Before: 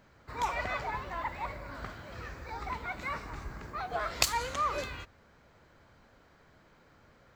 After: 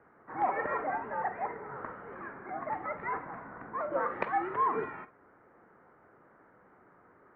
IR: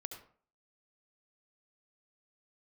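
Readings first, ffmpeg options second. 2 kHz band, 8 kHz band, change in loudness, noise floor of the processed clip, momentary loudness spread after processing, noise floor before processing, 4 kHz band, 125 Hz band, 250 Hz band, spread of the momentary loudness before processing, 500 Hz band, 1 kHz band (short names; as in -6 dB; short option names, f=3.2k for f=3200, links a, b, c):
-1.5 dB, under -40 dB, +0.5 dB, -62 dBFS, 14 LU, -62 dBFS, under -25 dB, -8.5 dB, +4.0 dB, 14 LU, +4.5 dB, +3.0 dB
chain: -filter_complex "[0:a]asplit=2[a][b];[1:a]atrim=start_sample=2205,afade=t=out:st=0.14:d=0.01,atrim=end_sample=6615,asetrate=74970,aresample=44100[c];[b][c]afir=irnorm=-1:irlink=0,volume=6dB[d];[a][d]amix=inputs=2:normalize=0,highpass=f=300:t=q:w=0.5412,highpass=f=300:t=q:w=1.307,lowpass=f=2k:t=q:w=0.5176,lowpass=f=2k:t=q:w=0.7071,lowpass=f=2k:t=q:w=1.932,afreqshift=-140,acontrast=70,volume=-8.5dB"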